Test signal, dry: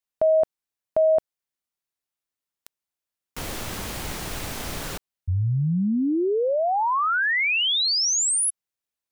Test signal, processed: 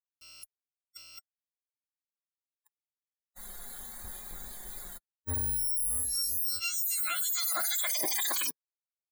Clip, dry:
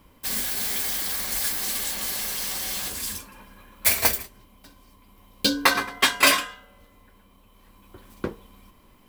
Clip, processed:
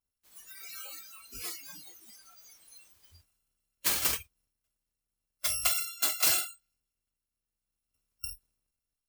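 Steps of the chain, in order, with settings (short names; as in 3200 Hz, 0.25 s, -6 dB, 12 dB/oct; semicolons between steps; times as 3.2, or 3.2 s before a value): FFT order left unsorted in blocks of 256 samples; transient shaper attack -1 dB, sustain +6 dB; spectral noise reduction 26 dB; gain -8 dB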